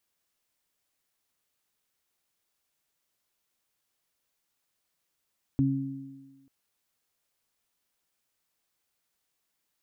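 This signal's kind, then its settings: additive tone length 0.89 s, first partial 136 Hz, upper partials 1.5 dB, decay 1.17 s, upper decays 1.41 s, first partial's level -23 dB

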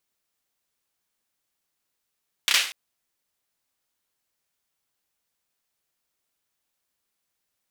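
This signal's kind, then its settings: hand clap length 0.24 s, bursts 3, apart 30 ms, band 2.8 kHz, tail 0.45 s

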